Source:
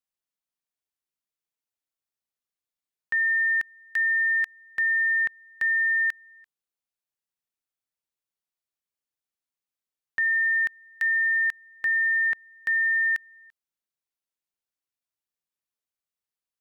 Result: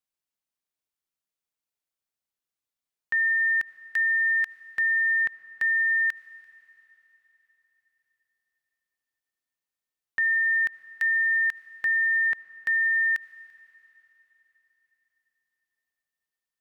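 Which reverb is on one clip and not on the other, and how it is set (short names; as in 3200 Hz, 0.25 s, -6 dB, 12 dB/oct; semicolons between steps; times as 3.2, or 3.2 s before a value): digital reverb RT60 4 s, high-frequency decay 1×, pre-delay 35 ms, DRR 15.5 dB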